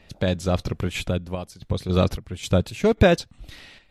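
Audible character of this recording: random-step tremolo 3.7 Hz, depth 80%; MP3

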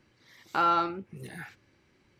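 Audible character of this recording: noise floor -67 dBFS; spectral tilt -3.0 dB/octave

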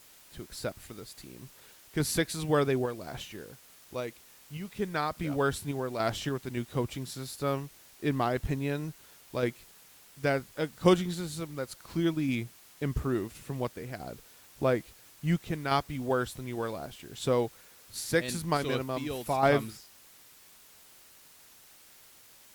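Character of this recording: random-step tremolo, depth 55%; a quantiser's noise floor 10-bit, dither triangular; Opus

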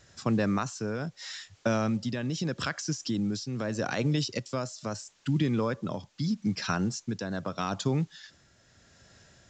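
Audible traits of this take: a quantiser's noise floor 10-bit, dither triangular; tremolo triangle 0.79 Hz, depth 55%; µ-law

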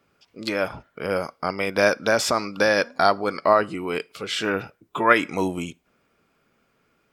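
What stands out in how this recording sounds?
noise floor -68 dBFS; spectral tilt -3.5 dB/octave

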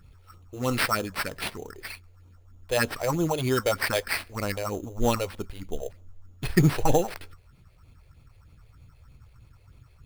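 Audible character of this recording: phasing stages 4, 3.2 Hz, lowest notch 200–2000 Hz; aliases and images of a low sample rate 6.8 kHz, jitter 0%

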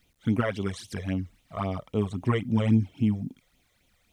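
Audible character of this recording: phasing stages 12, 3.7 Hz, lowest notch 250–1700 Hz; a quantiser's noise floor 12-bit, dither none

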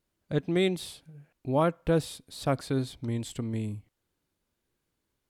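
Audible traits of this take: noise floor -82 dBFS; spectral tilt -6.0 dB/octave

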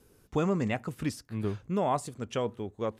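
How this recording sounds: noise floor -64 dBFS; spectral tilt -6.5 dB/octave

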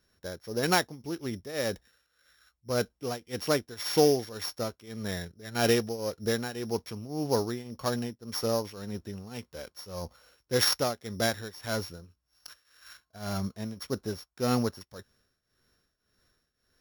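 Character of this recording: a buzz of ramps at a fixed pitch in blocks of 8 samples; tremolo triangle 1.8 Hz, depth 85%

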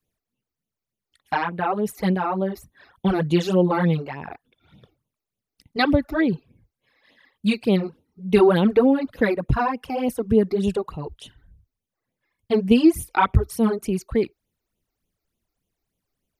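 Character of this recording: phasing stages 12, 3.4 Hz, lowest notch 160–1700 Hz

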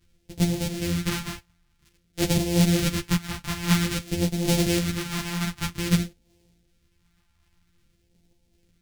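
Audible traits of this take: a buzz of ramps at a fixed pitch in blocks of 256 samples; phasing stages 2, 0.51 Hz, lowest notch 450–1200 Hz; tremolo saw down 2.7 Hz, depth 35%; a shimmering, thickened sound

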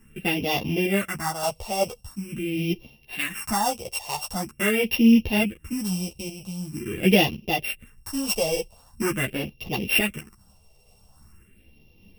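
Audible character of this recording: a buzz of ramps at a fixed pitch in blocks of 16 samples; phasing stages 4, 0.44 Hz, lowest notch 260–1500 Hz; random-step tremolo 3.5 Hz; a shimmering, thickened sound

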